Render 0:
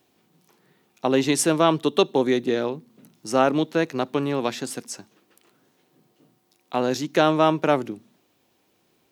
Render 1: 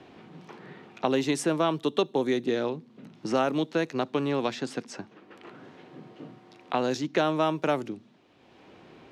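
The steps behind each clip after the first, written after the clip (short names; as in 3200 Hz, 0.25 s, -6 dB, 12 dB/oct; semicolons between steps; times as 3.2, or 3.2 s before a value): low-pass opened by the level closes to 2600 Hz, open at -15 dBFS; three-band squash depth 70%; gain -5 dB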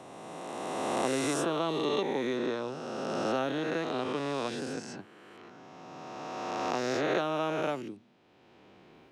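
spectral swells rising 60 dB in 2.89 s; gain -8.5 dB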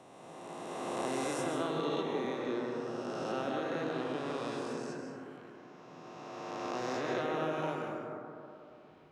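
plate-style reverb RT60 2.7 s, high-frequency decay 0.25×, pre-delay 0.12 s, DRR 0 dB; gain -7.5 dB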